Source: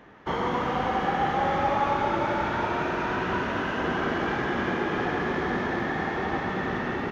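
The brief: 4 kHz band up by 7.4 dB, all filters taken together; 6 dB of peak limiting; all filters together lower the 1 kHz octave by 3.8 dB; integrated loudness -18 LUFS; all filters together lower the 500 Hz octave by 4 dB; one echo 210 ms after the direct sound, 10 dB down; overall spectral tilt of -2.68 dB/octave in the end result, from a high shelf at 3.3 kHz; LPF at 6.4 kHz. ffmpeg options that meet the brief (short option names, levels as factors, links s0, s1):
-af "lowpass=6400,equalizer=f=500:t=o:g=-4.5,equalizer=f=1000:t=o:g=-4.5,highshelf=f=3300:g=8,equalizer=f=4000:t=o:g=5.5,alimiter=limit=0.0841:level=0:latency=1,aecho=1:1:210:0.316,volume=3.98"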